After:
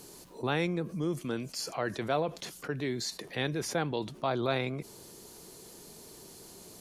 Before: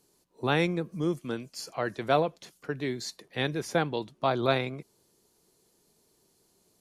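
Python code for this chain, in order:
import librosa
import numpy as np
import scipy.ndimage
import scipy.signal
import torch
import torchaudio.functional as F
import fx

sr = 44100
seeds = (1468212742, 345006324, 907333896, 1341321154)

y = fx.env_flatten(x, sr, amount_pct=50)
y = y * 10.0 ** (-6.5 / 20.0)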